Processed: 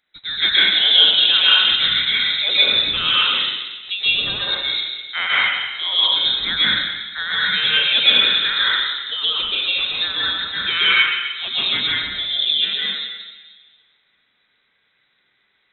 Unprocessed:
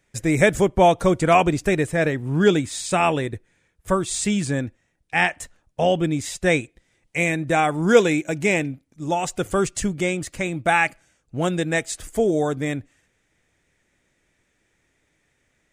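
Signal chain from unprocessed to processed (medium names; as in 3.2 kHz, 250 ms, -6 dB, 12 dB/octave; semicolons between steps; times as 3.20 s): bass shelf 480 Hz -6.5 dB; plate-style reverb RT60 1.6 s, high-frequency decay 0.7×, pre-delay 115 ms, DRR -9 dB; frequency inversion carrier 3.9 kHz; trim -3.5 dB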